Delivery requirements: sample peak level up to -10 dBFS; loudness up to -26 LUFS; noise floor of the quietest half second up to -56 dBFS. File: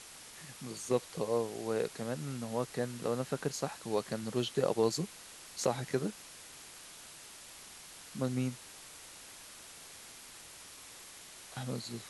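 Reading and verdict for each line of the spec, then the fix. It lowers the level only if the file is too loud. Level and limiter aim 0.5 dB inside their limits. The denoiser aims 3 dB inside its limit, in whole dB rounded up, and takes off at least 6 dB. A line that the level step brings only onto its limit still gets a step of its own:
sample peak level -15.5 dBFS: OK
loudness -36.0 LUFS: OK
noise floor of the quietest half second -52 dBFS: fail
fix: denoiser 7 dB, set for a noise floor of -52 dBFS

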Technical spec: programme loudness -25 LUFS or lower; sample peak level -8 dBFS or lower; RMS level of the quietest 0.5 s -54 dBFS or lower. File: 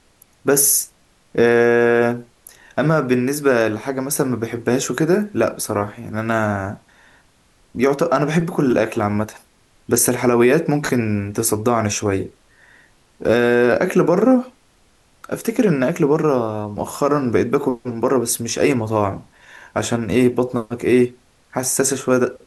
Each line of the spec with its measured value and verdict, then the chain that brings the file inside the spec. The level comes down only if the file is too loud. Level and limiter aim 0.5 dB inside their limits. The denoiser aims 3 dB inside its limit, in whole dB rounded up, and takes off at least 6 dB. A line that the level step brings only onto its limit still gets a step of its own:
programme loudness -18.5 LUFS: fail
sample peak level -4.5 dBFS: fail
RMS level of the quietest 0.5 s -56 dBFS: OK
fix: gain -7 dB

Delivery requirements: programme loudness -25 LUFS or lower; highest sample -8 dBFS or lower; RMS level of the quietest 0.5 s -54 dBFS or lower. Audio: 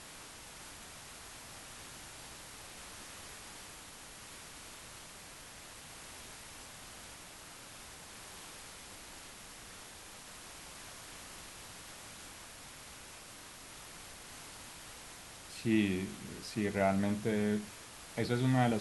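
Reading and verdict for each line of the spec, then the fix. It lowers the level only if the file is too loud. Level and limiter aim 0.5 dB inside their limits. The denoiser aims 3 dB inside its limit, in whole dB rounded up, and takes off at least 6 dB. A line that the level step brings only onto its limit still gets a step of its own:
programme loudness -41.0 LUFS: OK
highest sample -16.0 dBFS: OK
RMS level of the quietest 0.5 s -51 dBFS: fail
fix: denoiser 6 dB, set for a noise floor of -51 dBFS

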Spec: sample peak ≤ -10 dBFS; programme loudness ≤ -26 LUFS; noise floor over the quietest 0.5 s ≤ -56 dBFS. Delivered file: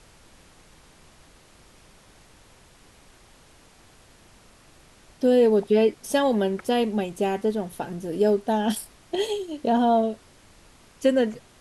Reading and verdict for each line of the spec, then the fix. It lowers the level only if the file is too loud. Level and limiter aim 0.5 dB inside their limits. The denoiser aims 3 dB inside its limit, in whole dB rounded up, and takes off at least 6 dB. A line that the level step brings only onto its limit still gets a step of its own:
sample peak -9.0 dBFS: fail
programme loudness -23.5 LUFS: fail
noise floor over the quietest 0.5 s -54 dBFS: fail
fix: gain -3 dB

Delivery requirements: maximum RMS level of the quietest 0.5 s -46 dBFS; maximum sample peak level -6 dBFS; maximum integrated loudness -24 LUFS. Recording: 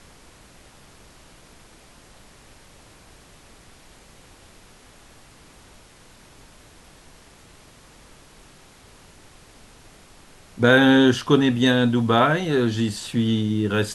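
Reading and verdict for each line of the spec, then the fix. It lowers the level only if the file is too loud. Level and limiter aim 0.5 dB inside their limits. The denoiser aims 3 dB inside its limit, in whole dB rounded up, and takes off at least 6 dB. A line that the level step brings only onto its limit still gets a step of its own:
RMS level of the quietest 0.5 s -50 dBFS: OK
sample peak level -2.5 dBFS: fail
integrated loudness -19.0 LUFS: fail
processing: gain -5.5 dB

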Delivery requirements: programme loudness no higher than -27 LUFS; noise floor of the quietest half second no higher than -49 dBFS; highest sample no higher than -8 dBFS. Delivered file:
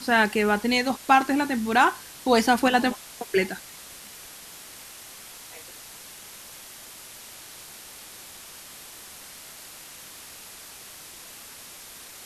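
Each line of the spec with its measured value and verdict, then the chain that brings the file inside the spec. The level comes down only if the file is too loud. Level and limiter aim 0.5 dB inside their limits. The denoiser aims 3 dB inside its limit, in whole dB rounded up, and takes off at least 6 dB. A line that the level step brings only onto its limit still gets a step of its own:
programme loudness -22.5 LUFS: fail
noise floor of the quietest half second -44 dBFS: fail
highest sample -5.0 dBFS: fail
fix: denoiser 6 dB, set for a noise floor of -44 dBFS; gain -5 dB

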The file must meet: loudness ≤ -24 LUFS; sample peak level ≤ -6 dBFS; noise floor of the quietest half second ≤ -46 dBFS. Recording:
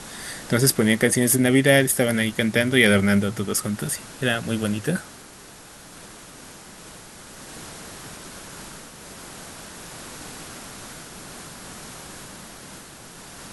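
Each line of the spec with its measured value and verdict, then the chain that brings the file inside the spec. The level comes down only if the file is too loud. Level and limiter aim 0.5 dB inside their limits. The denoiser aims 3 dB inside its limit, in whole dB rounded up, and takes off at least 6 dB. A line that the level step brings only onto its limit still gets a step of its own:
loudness -20.5 LUFS: fail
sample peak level -3.0 dBFS: fail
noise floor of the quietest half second -45 dBFS: fail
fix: gain -4 dB

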